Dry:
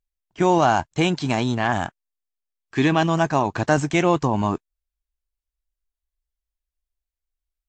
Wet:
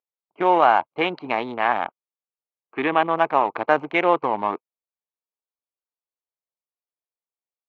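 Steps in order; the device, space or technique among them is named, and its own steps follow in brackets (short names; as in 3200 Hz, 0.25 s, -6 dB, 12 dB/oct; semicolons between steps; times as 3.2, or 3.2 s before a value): Wiener smoothing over 25 samples; phone earpiece (speaker cabinet 420–3400 Hz, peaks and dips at 490 Hz +5 dB, 870 Hz +4 dB, 1200 Hz +6 dB, 2200 Hz +6 dB); 1.85–3.17 bell 5200 Hz -8 dB 0.91 oct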